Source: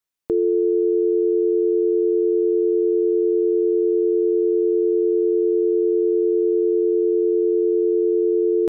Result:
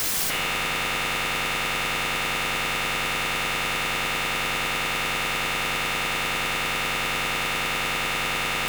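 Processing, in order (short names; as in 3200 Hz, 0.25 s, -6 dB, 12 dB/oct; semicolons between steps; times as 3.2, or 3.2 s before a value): infinite clipping; HPF 93 Hz 12 dB/oct; bell 240 Hz +12.5 dB 1.3 oct; notch 470 Hz, Q 12; in parallel at -9 dB: bit-crush 5-bit; on the sum: wavefolder -25 dBFS; on a send at -5 dB: reverb RT60 1.1 s, pre-delay 4 ms; on the sum: gain +3.5 dB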